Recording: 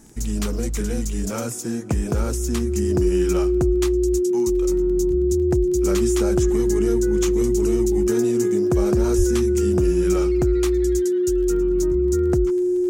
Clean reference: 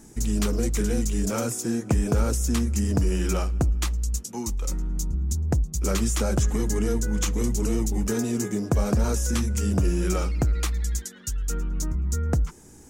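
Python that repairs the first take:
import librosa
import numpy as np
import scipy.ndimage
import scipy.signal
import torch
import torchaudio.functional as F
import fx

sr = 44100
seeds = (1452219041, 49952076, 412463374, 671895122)

y = fx.fix_declick_ar(x, sr, threshold=6.5)
y = fx.notch(y, sr, hz=360.0, q=30.0)
y = fx.highpass(y, sr, hz=140.0, slope=24, at=(9.17, 9.29), fade=0.02)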